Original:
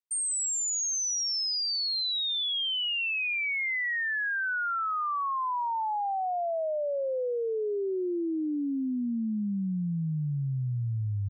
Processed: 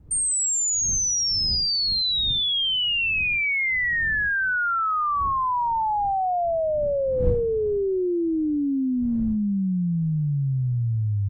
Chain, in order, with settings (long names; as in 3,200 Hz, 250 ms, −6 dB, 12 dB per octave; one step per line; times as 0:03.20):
wind on the microphone 100 Hz −44 dBFS
level +6.5 dB